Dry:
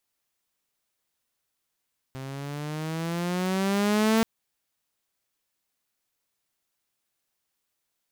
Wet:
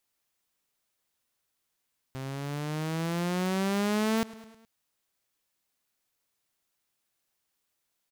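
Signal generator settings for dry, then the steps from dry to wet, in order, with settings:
gliding synth tone saw, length 2.08 s, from 131 Hz, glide +9.5 st, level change +16.5 dB, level -16 dB
feedback echo 0.105 s, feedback 56%, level -22 dB; compressor 2.5:1, threshold -27 dBFS

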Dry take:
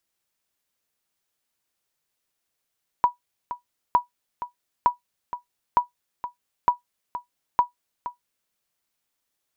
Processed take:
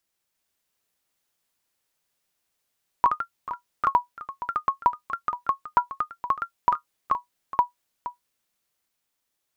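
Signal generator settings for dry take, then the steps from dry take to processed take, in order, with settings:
sonar ping 974 Hz, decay 0.13 s, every 0.91 s, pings 6, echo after 0.47 s, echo -13 dB -8.5 dBFS
echoes that change speed 0.351 s, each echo +2 st, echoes 3

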